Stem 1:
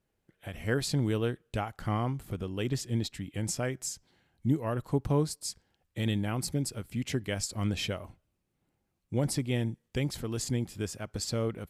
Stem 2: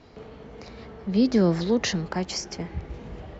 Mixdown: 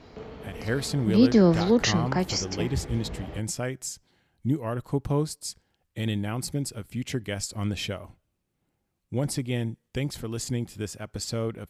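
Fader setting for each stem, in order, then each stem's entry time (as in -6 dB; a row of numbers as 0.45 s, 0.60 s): +1.5 dB, +2.0 dB; 0.00 s, 0.00 s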